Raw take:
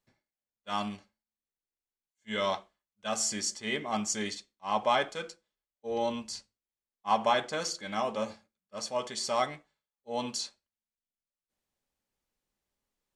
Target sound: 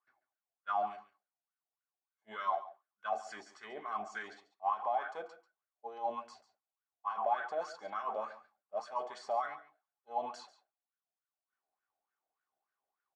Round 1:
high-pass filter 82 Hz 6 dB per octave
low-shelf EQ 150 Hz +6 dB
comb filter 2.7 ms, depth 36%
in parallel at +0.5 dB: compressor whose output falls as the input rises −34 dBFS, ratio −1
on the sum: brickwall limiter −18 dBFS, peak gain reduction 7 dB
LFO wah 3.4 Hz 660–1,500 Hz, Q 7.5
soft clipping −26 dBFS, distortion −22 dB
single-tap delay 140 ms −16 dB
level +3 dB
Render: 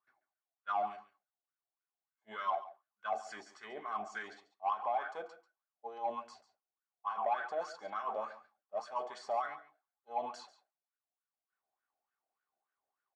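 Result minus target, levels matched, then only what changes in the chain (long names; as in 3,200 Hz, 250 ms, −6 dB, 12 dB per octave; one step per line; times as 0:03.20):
soft clipping: distortion +16 dB
change: soft clipping −17 dBFS, distortion −38 dB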